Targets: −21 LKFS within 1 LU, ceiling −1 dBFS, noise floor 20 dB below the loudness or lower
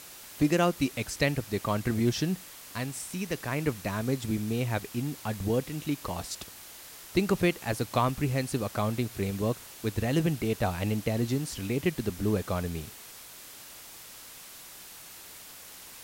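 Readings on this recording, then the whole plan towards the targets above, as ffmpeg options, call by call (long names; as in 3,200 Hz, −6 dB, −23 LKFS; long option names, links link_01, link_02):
background noise floor −47 dBFS; target noise floor −50 dBFS; integrated loudness −30.0 LKFS; sample peak −11.0 dBFS; target loudness −21.0 LKFS
→ -af "afftdn=noise_reduction=6:noise_floor=-47"
-af "volume=9dB"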